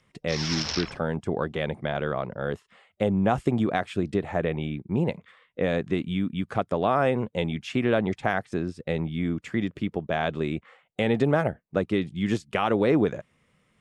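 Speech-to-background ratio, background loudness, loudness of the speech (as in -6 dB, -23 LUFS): 4.0 dB, -31.0 LUFS, -27.0 LUFS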